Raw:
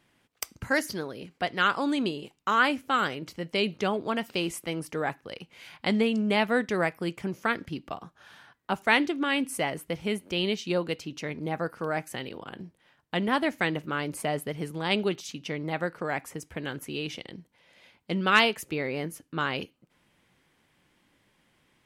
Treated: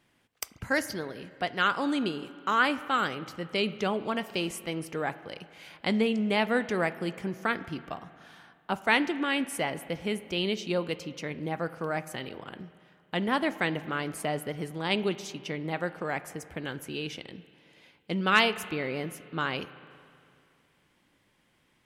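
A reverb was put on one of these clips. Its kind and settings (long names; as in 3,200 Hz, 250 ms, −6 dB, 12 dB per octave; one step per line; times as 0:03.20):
spring reverb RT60 2.4 s, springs 37/46 ms, chirp 35 ms, DRR 14.5 dB
level −1.5 dB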